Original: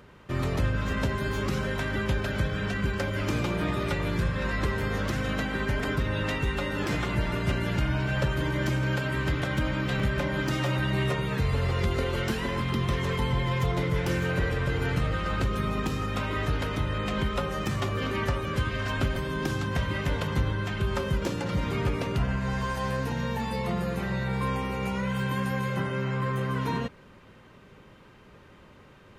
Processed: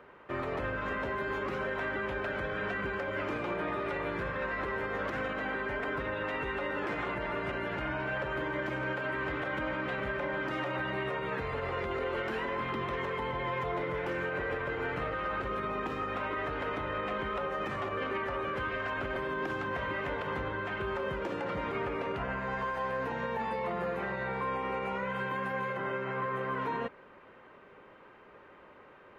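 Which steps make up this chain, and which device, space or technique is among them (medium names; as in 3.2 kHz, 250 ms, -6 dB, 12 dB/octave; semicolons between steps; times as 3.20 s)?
DJ mixer with the lows and highs turned down (three-band isolator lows -17 dB, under 320 Hz, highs -21 dB, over 2.5 kHz; peak limiter -27.5 dBFS, peak gain reduction 9 dB); trim +2 dB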